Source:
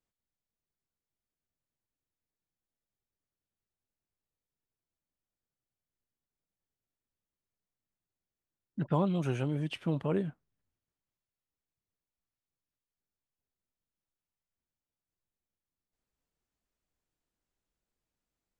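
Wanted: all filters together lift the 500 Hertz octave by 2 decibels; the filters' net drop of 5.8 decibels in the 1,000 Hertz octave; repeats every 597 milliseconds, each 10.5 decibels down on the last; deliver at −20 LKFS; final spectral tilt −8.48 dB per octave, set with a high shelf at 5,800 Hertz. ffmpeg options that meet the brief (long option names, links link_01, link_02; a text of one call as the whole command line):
ffmpeg -i in.wav -af "equalizer=frequency=500:width_type=o:gain=4.5,equalizer=frequency=1000:width_type=o:gain=-8.5,highshelf=frequency=5800:gain=-7.5,aecho=1:1:597|1194|1791:0.299|0.0896|0.0269,volume=13dB" out.wav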